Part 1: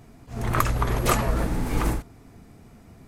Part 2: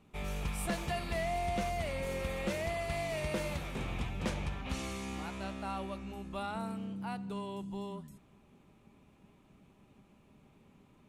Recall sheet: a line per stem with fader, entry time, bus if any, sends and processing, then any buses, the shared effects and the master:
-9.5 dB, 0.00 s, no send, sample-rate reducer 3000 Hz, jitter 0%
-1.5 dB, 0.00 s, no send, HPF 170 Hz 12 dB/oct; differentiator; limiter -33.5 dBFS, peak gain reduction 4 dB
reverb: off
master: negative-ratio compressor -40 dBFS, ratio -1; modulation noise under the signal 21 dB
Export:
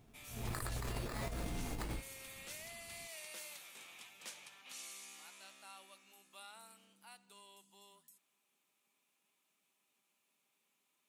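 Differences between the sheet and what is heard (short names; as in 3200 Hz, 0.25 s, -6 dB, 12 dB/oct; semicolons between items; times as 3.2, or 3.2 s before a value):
stem 1 -9.5 dB -> -16.0 dB; master: missing modulation noise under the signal 21 dB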